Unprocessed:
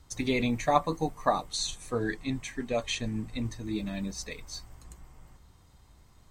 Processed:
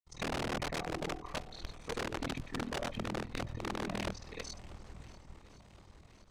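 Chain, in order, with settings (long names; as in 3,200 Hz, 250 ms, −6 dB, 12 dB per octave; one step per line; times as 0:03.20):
treble cut that deepens with the level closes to 870 Hz, closed at −27 dBFS
high-shelf EQ 6,900 Hz +5.5 dB
notch filter 1,600 Hz, Q 5.4
hum removal 105.9 Hz, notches 7
asymmetric clip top −30.5 dBFS
granular cloud 100 ms, grains 20 per second
amplitude modulation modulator 40 Hz, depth 95%
wrap-around overflow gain 33 dB
high-frequency loss of the air 60 metres
feedback echo with a long and a short gap by turns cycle 1,068 ms, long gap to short 1.5 to 1, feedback 48%, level −19.5 dB
level +4 dB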